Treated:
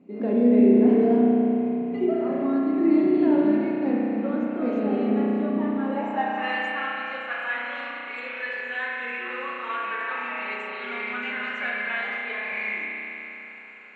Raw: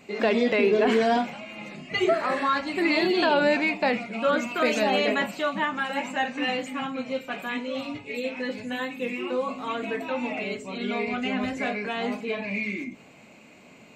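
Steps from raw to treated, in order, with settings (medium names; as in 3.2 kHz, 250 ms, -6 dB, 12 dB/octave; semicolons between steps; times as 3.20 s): band-pass sweep 260 Hz -> 1.6 kHz, 5.55–6.55 s; spring tank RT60 3.6 s, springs 33 ms, chirp 40 ms, DRR -4.5 dB; trim +4 dB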